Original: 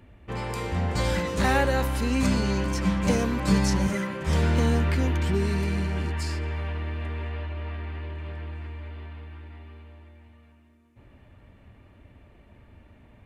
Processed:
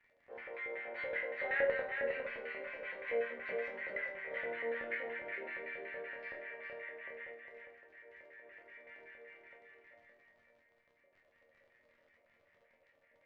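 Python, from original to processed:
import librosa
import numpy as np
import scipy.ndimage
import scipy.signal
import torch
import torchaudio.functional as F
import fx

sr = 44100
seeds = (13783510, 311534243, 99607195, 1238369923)

y = scipy.signal.sosfilt(scipy.signal.butter(2, 410.0, 'highpass', fs=sr, output='sos'), x)
y = fx.band_shelf(y, sr, hz=2400.0, db=8.5, octaves=1.7)
y = fx.over_compress(y, sr, threshold_db=-45.0, ratio=-1.0, at=(7.32, 9.57))
y = fx.filter_lfo_bandpass(y, sr, shape='square', hz=5.3, low_hz=550.0, high_hz=2000.0, q=6.4)
y = fx.dmg_crackle(y, sr, seeds[0], per_s=44.0, level_db=-45.0)
y = fx.spacing_loss(y, sr, db_at_10k=36)
y = fx.resonator_bank(y, sr, root=39, chord='minor', decay_s=0.38)
y = y + 10.0 ** (-5.0 / 20.0) * np.pad(y, (int(407 * sr / 1000.0), 0))[:len(y)]
y = F.gain(torch.from_numpy(y), 12.0).numpy()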